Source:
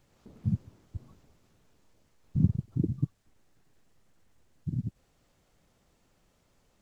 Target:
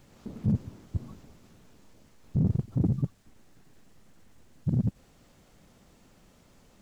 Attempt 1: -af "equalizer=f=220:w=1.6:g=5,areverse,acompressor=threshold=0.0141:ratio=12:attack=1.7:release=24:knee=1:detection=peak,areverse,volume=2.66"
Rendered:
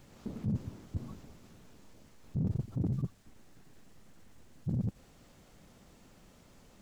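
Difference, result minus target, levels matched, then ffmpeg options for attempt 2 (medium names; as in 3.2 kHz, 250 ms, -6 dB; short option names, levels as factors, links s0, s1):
compression: peak gain reduction +7.5 dB
-af "equalizer=f=220:w=1.6:g=5,areverse,acompressor=threshold=0.0355:ratio=12:attack=1.7:release=24:knee=1:detection=peak,areverse,volume=2.66"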